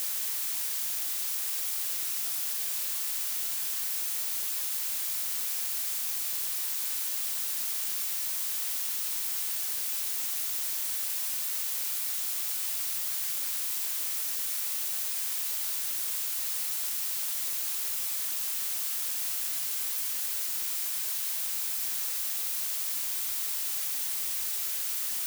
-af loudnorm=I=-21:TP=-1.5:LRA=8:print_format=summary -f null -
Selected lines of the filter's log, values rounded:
Input Integrated:    -28.7 LUFS
Input True Peak:     -16.8 dBTP
Input LRA:             0.0 LU
Input Threshold:     -38.7 LUFS